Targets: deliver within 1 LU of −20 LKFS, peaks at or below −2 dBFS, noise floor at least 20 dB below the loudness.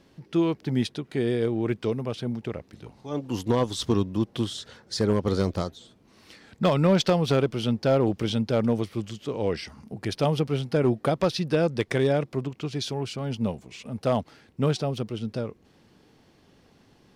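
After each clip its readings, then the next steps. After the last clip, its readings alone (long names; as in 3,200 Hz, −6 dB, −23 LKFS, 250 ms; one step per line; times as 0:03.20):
share of clipped samples 0.2%; peaks flattened at −13.5 dBFS; integrated loudness −26.5 LKFS; sample peak −13.5 dBFS; target loudness −20.0 LKFS
→ clipped peaks rebuilt −13.5 dBFS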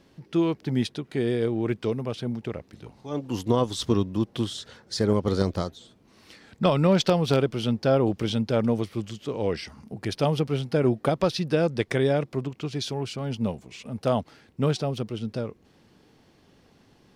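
share of clipped samples 0.0%; integrated loudness −26.5 LKFS; sample peak −6.5 dBFS; target loudness −20.0 LKFS
→ level +6.5 dB
brickwall limiter −2 dBFS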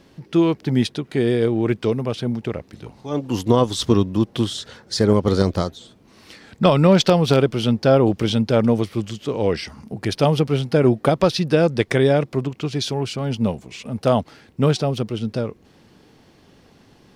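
integrated loudness −20.0 LKFS; sample peak −2.0 dBFS; background noise floor −53 dBFS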